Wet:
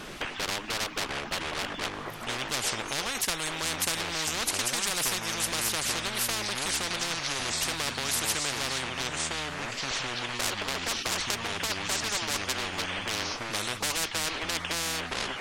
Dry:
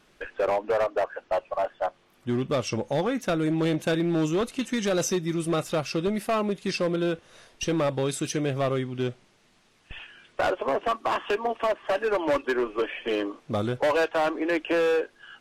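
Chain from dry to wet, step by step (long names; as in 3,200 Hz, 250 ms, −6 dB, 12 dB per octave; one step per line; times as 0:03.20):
delay with pitch and tempo change per echo 415 ms, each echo −6 semitones, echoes 2, each echo −6 dB
every bin compressed towards the loudest bin 10 to 1
level +3.5 dB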